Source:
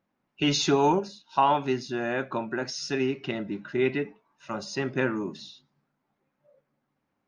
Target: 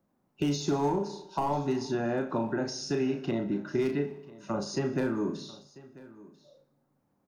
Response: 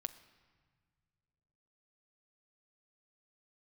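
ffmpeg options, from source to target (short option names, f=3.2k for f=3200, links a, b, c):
-filter_complex "[0:a]asoftclip=type=hard:threshold=-17dB,asplit=2[a][b];[b]adelay=35,volume=-6.5dB[c];[a][c]amix=inputs=2:normalize=0,asplit=2[d][e];[e]aecho=0:1:61|122|183|244|305|366:0.133|0.08|0.048|0.0288|0.0173|0.0104[f];[d][f]amix=inputs=2:normalize=0,acrossover=split=240|720[g][h][i];[g]acompressor=threshold=-38dB:ratio=4[j];[h]acompressor=threshold=-35dB:ratio=4[k];[i]acompressor=threshold=-35dB:ratio=4[l];[j][k][l]amix=inputs=3:normalize=0,equalizer=f=2.5k:t=o:w=2.1:g=-12.5,asplit=2[m][n];[n]aecho=0:1:992:0.0944[o];[m][o]amix=inputs=2:normalize=0,volume=5dB"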